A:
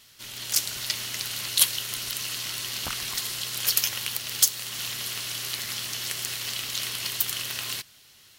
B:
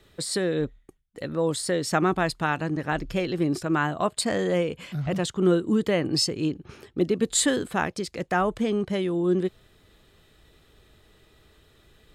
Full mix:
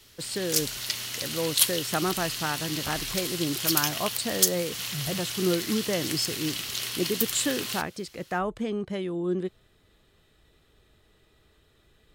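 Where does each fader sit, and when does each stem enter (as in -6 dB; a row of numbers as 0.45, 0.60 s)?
-1.5, -5.0 dB; 0.00, 0.00 s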